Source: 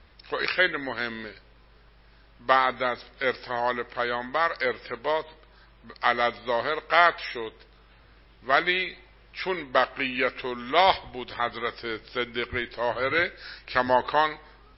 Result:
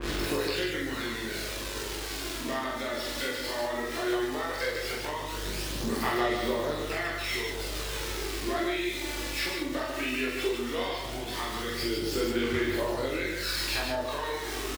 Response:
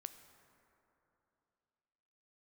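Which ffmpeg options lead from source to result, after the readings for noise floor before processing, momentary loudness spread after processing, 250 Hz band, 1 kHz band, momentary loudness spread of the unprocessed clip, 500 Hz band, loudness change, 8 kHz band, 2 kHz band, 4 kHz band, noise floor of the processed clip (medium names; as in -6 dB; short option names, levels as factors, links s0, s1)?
-55 dBFS, 5 LU, +4.0 dB, -9.5 dB, 13 LU, -3.0 dB, -5.0 dB, no reading, -6.0 dB, 0.0 dB, -36 dBFS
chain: -filter_complex "[0:a]aeval=exprs='val(0)+0.5*0.0266*sgn(val(0))':c=same,highpass=f=54:w=0.5412,highpass=f=54:w=1.3066,equalizer=f=330:t=o:w=0.64:g=12,asplit=2[s0][s1];[s1]alimiter=limit=0.211:level=0:latency=1,volume=1[s2];[s0][s2]amix=inputs=2:normalize=0,acompressor=threshold=0.0631:ratio=6,flanger=delay=20:depth=2.7:speed=0.58,aeval=exprs='val(0)+0.00708*(sin(2*PI*50*n/s)+sin(2*PI*2*50*n/s)/2+sin(2*PI*3*50*n/s)/3+sin(2*PI*4*50*n/s)/4+sin(2*PI*5*50*n/s)/5)':c=same,aphaser=in_gain=1:out_gain=1:delay=3.5:decay=0.5:speed=0.16:type=sinusoidal,aecho=1:1:46.65|148.7:0.708|0.631,asplit=2[s3][s4];[1:a]atrim=start_sample=2205,asetrate=25137,aresample=44100,adelay=42[s5];[s4][s5]afir=irnorm=-1:irlink=0,volume=0.562[s6];[s3][s6]amix=inputs=2:normalize=0,adynamicequalizer=threshold=0.00708:dfrequency=2600:dqfactor=0.7:tfrequency=2600:tqfactor=0.7:attack=5:release=100:ratio=0.375:range=3:mode=boostabove:tftype=highshelf,volume=0.447"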